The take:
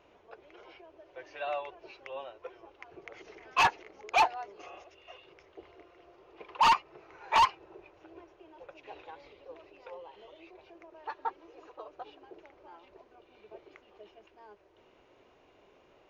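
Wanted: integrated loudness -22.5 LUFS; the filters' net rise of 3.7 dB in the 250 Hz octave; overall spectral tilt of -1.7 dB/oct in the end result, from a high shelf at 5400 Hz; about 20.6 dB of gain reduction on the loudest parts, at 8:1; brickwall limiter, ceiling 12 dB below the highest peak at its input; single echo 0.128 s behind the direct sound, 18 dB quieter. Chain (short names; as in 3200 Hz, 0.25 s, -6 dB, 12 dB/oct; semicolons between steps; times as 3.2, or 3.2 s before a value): bell 250 Hz +5.5 dB; high shelf 5400 Hz +3.5 dB; compressor 8:1, threshold -42 dBFS; limiter -39 dBFS; echo 0.128 s -18 dB; gain +29 dB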